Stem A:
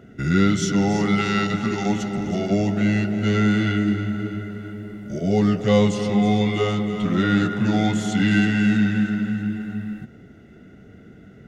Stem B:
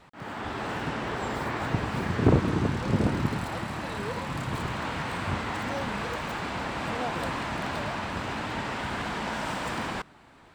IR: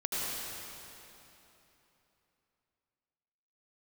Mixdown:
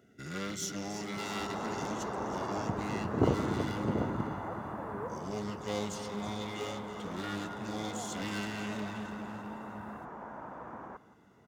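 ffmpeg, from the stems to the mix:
-filter_complex "[0:a]aeval=exprs='clip(val(0),-1,0.0668)':c=same,volume=-14.5dB[a];[1:a]lowpass=f=1.3k:w=0.5412,lowpass=f=1.3k:w=1.3066,adelay=950,volume=-3.5dB,afade=t=out:st=5:d=0.38:silence=0.446684,asplit=2[b][c];[c]volume=-17.5dB,aecho=0:1:171:1[d];[a][b][d]amix=inputs=3:normalize=0,highpass=50,bass=f=250:g=-6,treble=f=4k:g=10"

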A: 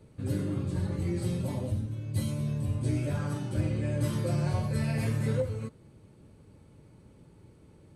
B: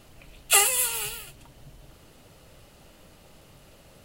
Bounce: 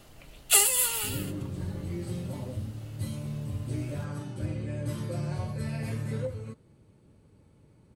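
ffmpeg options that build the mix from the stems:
-filter_complex "[0:a]adelay=850,volume=-4dB[a];[1:a]bandreject=f=2.5k:w=22,acrossover=split=460|3000[b][c][d];[c]acompressor=threshold=-32dB:ratio=3[e];[b][e][d]amix=inputs=3:normalize=0,volume=-0.5dB[f];[a][f]amix=inputs=2:normalize=0"

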